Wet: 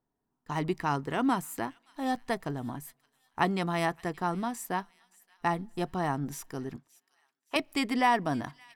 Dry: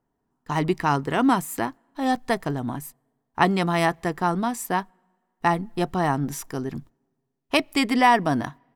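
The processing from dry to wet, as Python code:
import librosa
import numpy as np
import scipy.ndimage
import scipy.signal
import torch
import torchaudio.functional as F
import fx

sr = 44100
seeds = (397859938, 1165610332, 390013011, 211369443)

y = fx.bandpass_q(x, sr, hz=1300.0, q=0.5, at=(6.76, 7.56))
y = fx.echo_wet_highpass(y, sr, ms=572, feedback_pct=43, hz=2300.0, wet_db=-20.0)
y = y * 10.0 ** (-7.5 / 20.0)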